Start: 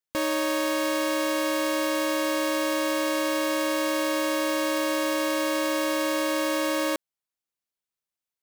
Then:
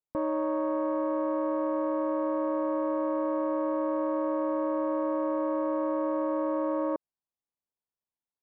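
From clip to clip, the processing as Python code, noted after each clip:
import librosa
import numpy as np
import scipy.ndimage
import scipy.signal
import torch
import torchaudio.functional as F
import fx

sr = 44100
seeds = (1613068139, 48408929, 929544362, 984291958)

y = scipy.signal.sosfilt(scipy.signal.cheby1(3, 1.0, 1000.0, 'lowpass', fs=sr, output='sos'), x)
y = F.gain(torch.from_numpy(y), -1.0).numpy()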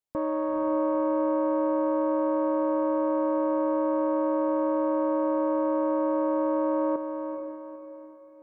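y = fx.echo_diffused(x, sr, ms=459, feedback_pct=41, wet_db=-7.0)
y = F.gain(torch.from_numpy(y), 1.0).numpy()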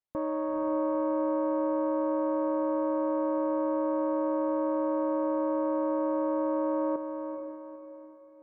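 y = fx.air_absorb(x, sr, metres=170.0)
y = F.gain(torch.from_numpy(y), -2.5).numpy()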